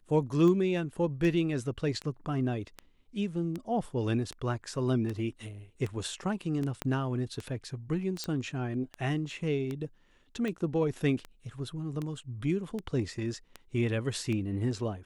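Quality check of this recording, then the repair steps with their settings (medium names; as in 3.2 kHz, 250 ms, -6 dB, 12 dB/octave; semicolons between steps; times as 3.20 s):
tick 78 rpm -23 dBFS
6.82 s: pop -17 dBFS
8.24 s: pop -19 dBFS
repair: de-click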